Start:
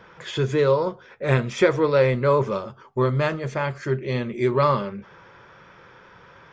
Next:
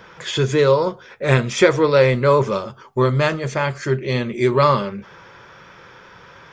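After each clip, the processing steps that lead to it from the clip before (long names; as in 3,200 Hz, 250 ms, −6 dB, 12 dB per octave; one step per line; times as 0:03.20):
high-shelf EQ 3,900 Hz +9 dB
level +4 dB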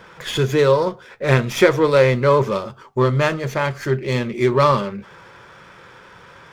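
windowed peak hold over 3 samples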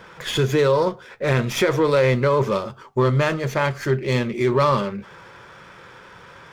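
brickwall limiter −9.5 dBFS, peak gain reduction 8 dB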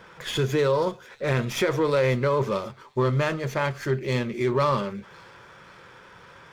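delay with a high-pass on its return 539 ms, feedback 49%, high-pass 3,300 Hz, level −18 dB
level −4.5 dB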